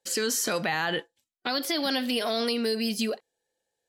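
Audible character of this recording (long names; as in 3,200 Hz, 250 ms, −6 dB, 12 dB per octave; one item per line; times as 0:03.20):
background noise floor −87 dBFS
spectral slope −3.5 dB per octave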